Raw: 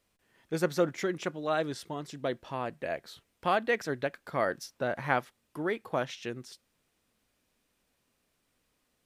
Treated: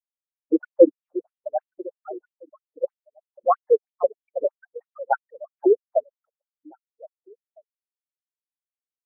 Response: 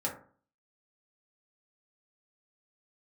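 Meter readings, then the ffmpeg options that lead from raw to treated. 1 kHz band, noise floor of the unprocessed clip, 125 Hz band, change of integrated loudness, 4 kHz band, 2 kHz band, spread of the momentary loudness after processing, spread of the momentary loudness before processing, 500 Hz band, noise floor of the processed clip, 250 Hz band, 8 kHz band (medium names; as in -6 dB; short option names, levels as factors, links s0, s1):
+4.5 dB, -77 dBFS, under -30 dB, +9.0 dB, under -40 dB, -9.0 dB, 21 LU, 11 LU, +10.0 dB, under -85 dBFS, +8.0 dB, under -30 dB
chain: -af "afftfilt=real='re*gte(hypot(re,im),0.2)':imag='im*gte(hypot(re,im),0.2)':win_size=1024:overlap=0.75,equalizer=f=330:w=0.32:g=11.5,aecho=1:1:534|1068|1602:0.224|0.0761|0.0259,aresample=32000,aresample=44100,afftfilt=real='re*between(b*sr/1024,330*pow(4600/330,0.5+0.5*sin(2*PI*3.1*pts/sr))/1.41,330*pow(4600/330,0.5+0.5*sin(2*PI*3.1*pts/sr))*1.41)':imag='im*between(b*sr/1024,330*pow(4600/330,0.5+0.5*sin(2*PI*3.1*pts/sr))/1.41,330*pow(4600/330,0.5+0.5*sin(2*PI*3.1*pts/sr))*1.41)':win_size=1024:overlap=0.75,volume=2"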